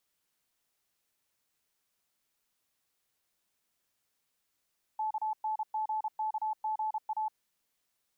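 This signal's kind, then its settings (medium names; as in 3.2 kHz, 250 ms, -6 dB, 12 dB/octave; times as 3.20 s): Morse "KNGKGA" 32 wpm 866 Hz -29.5 dBFS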